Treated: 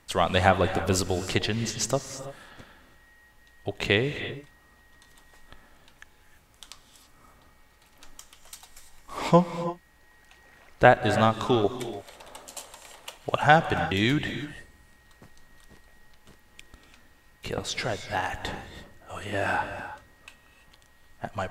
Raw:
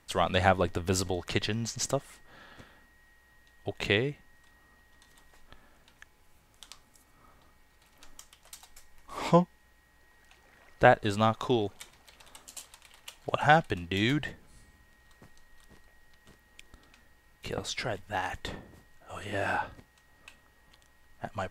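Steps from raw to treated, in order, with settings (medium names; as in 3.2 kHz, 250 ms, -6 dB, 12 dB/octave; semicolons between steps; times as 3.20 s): 11.64–13.18 s: peaking EQ 580 Hz +10.5 dB 1.9 oct; gated-style reverb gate 360 ms rising, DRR 9.5 dB; trim +3.5 dB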